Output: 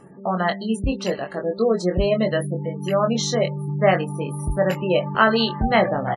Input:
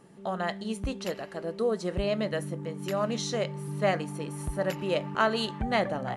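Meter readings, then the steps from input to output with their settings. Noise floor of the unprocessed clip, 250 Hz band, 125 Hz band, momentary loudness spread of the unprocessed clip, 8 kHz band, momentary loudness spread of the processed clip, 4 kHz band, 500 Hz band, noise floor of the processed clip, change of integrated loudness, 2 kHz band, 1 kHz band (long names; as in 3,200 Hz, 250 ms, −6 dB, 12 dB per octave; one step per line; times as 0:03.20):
−45 dBFS, +9.0 dB, +9.5 dB, 9 LU, +7.5 dB, 9 LU, +8.0 dB, +9.0 dB, −37 dBFS, +9.0 dB, +9.0 dB, +9.0 dB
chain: gate on every frequency bin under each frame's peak −25 dB strong
double-tracking delay 22 ms −5 dB
level +8 dB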